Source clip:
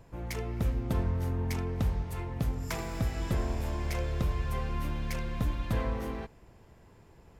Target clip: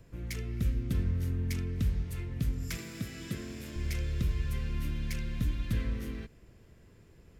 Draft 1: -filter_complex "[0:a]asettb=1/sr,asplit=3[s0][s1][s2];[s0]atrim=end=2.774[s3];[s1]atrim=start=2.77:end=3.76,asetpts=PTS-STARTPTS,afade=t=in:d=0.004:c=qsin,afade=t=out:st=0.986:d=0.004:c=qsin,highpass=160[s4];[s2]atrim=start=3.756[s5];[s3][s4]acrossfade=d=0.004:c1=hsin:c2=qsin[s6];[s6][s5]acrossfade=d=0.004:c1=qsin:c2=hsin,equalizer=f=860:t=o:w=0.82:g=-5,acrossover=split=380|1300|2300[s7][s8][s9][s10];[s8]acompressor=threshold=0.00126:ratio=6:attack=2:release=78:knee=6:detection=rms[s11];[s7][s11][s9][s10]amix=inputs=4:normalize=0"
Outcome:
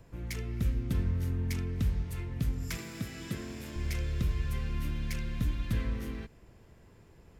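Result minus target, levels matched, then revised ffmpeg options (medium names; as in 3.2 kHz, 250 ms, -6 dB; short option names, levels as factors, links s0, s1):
1 kHz band +3.5 dB
-filter_complex "[0:a]asettb=1/sr,asplit=3[s0][s1][s2];[s0]atrim=end=2.774[s3];[s1]atrim=start=2.77:end=3.76,asetpts=PTS-STARTPTS,afade=t=in:d=0.004:c=qsin,afade=t=out:st=0.986:d=0.004:c=qsin,highpass=160[s4];[s2]atrim=start=3.756[s5];[s3][s4]acrossfade=d=0.004:c1=hsin:c2=qsin[s6];[s6][s5]acrossfade=d=0.004:c1=qsin:c2=hsin,equalizer=f=860:t=o:w=0.82:g=-12.5,acrossover=split=380|1300|2300[s7][s8][s9][s10];[s8]acompressor=threshold=0.00126:ratio=6:attack=2:release=78:knee=6:detection=rms[s11];[s7][s11][s9][s10]amix=inputs=4:normalize=0"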